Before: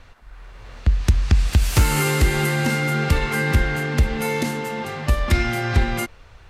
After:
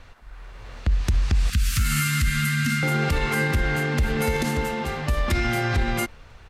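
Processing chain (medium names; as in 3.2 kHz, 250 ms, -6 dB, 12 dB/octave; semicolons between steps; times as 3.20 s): 1.50–2.83 s: elliptic band-stop 240–1300 Hz, stop band 40 dB; 3.74–4.16 s: echo throw 290 ms, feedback 60%, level -7.5 dB; peak limiter -13.5 dBFS, peak gain reduction 8 dB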